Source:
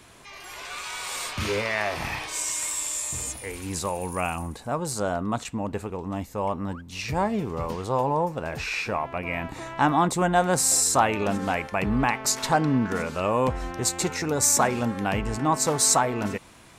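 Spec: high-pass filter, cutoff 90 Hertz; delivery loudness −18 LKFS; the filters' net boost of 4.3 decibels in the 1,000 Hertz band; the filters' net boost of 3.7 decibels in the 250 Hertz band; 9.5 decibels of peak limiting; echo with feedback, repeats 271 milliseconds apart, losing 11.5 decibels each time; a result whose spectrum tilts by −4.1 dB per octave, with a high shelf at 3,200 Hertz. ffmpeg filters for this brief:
ffmpeg -i in.wav -af "highpass=90,equalizer=frequency=250:width_type=o:gain=4.5,equalizer=frequency=1000:width_type=o:gain=4.5,highshelf=frequency=3200:gain=7,alimiter=limit=-10.5dB:level=0:latency=1,aecho=1:1:271|542|813:0.266|0.0718|0.0194,volume=5dB" out.wav

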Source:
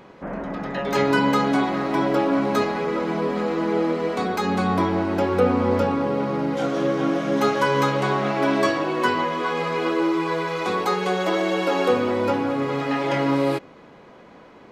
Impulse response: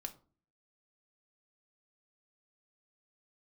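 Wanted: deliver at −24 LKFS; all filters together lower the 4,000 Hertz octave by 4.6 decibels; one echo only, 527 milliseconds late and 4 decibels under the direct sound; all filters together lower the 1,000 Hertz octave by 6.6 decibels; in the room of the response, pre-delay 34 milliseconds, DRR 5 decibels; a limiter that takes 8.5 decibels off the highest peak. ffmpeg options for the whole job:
-filter_complex "[0:a]equalizer=frequency=1000:width_type=o:gain=-8,equalizer=frequency=4000:width_type=o:gain=-5.5,alimiter=limit=-17dB:level=0:latency=1,aecho=1:1:527:0.631,asplit=2[link_01][link_02];[1:a]atrim=start_sample=2205,adelay=34[link_03];[link_02][link_03]afir=irnorm=-1:irlink=0,volume=-2dB[link_04];[link_01][link_04]amix=inputs=2:normalize=0"

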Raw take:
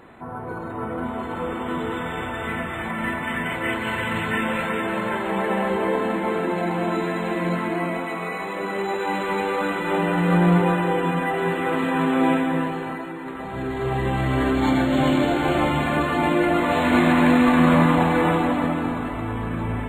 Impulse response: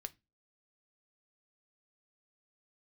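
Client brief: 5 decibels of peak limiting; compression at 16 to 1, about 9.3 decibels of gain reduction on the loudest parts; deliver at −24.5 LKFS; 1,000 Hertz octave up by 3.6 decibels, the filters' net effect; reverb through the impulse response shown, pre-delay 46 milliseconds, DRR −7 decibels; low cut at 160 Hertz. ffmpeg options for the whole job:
-filter_complex "[0:a]highpass=160,equalizer=frequency=1000:width_type=o:gain=4.5,acompressor=threshold=-21dB:ratio=16,alimiter=limit=-18dB:level=0:latency=1,asplit=2[link_01][link_02];[1:a]atrim=start_sample=2205,adelay=46[link_03];[link_02][link_03]afir=irnorm=-1:irlink=0,volume=11dB[link_04];[link_01][link_04]amix=inputs=2:normalize=0,volume=-5dB"

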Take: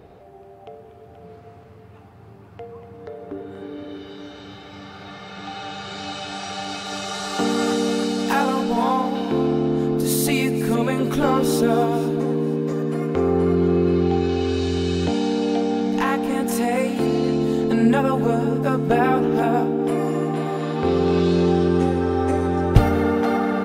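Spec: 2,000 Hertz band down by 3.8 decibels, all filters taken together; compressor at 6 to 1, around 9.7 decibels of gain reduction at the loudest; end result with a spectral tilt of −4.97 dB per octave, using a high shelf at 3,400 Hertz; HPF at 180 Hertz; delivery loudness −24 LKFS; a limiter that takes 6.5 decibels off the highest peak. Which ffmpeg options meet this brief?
ffmpeg -i in.wav -af "highpass=180,equalizer=frequency=2000:width_type=o:gain=-6,highshelf=frequency=3400:gain=3,acompressor=threshold=-25dB:ratio=6,volume=7dB,alimiter=limit=-14.5dB:level=0:latency=1" out.wav

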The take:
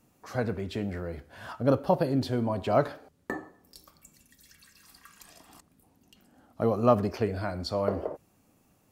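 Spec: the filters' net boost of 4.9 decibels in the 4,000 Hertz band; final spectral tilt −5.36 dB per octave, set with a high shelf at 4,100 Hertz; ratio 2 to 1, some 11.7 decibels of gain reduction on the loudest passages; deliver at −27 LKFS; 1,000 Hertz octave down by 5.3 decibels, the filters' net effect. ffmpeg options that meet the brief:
ffmpeg -i in.wav -af "equalizer=frequency=1000:width_type=o:gain=-8,equalizer=frequency=4000:width_type=o:gain=9,highshelf=frequency=4100:gain=-5,acompressor=threshold=-41dB:ratio=2,volume=13dB" out.wav

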